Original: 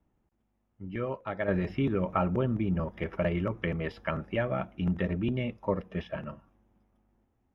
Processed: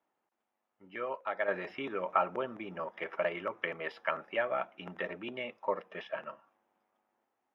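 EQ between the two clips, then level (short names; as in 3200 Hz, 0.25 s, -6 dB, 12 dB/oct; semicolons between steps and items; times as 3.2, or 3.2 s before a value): HPF 680 Hz 12 dB/oct; high shelf 4400 Hz -10.5 dB; +3.0 dB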